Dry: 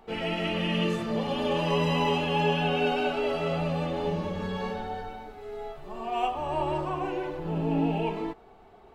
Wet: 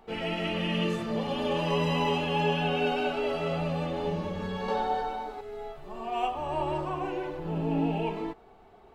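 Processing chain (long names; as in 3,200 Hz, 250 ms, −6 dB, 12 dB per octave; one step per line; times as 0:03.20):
0:04.68–0:05.41: octave-band graphic EQ 125/250/500/1,000/4,000/8,000 Hz −12/+5/+5/+10/+6/+5 dB
level −1.5 dB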